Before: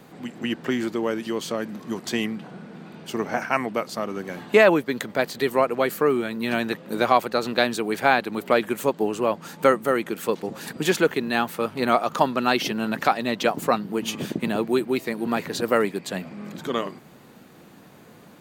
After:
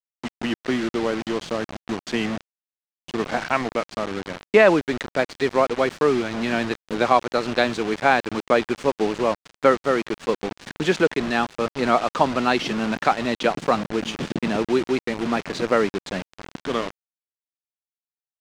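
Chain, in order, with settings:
bit reduction 5 bits
high-frequency loss of the air 110 metres
level +1.5 dB

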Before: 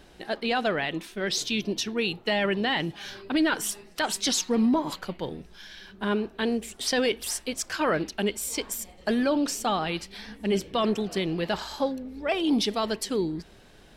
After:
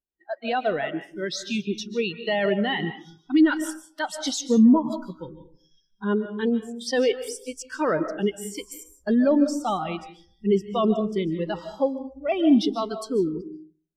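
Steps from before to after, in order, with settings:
noise reduction from a noise print of the clip's start 22 dB
comb and all-pass reverb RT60 0.66 s, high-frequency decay 0.5×, pre-delay 105 ms, DRR 7 dB
every bin expanded away from the loudest bin 1.5 to 1
level +5 dB

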